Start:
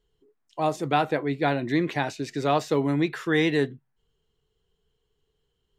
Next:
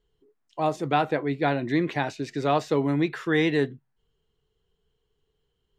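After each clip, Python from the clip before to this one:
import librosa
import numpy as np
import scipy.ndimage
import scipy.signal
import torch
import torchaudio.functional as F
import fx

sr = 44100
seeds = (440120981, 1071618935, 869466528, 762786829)

y = fx.high_shelf(x, sr, hz=6800.0, db=-8.0)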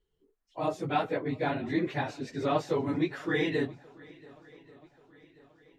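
y = fx.phase_scramble(x, sr, seeds[0], window_ms=50)
y = fx.echo_swing(y, sr, ms=1134, ratio=1.5, feedback_pct=45, wet_db=-23.5)
y = F.gain(torch.from_numpy(y), -5.5).numpy()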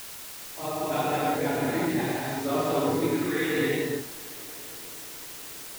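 y = fx.rev_gated(x, sr, seeds[1], gate_ms=400, shape='flat', drr_db=-8.0)
y = fx.quant_dither(y, sr, seeds[2], bits=6, dither='triangular')
y = F.gain(torch.from_numpy(y), -5.0).numpy()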